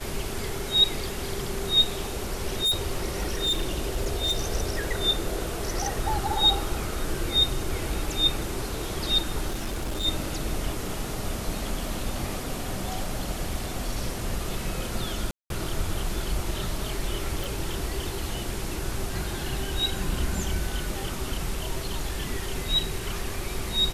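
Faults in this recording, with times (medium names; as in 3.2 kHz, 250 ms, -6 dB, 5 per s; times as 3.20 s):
2.53–4.44 s: clipped -21 dBFS
9.48–10.06 s: clipped -26 dBFS
15.31–15.50 s: dropout 192 ms
17.44 s: pop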